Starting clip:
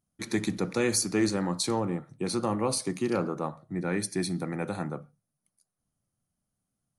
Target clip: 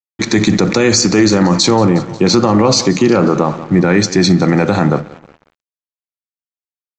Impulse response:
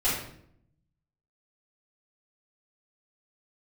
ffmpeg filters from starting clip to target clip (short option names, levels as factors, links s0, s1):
-af "aecho=1:1:180|360|540|720:0.1|0.055|0.0303|0.0166,aresample=16000,aeval=exprs='sgn(val(0))*max(abs(val(0))-0.00133,0)':c=same,aresample=44100,alimiter=level_in=16.8:limit=0.891:release=50:level=0:latency=1,volume=0.891"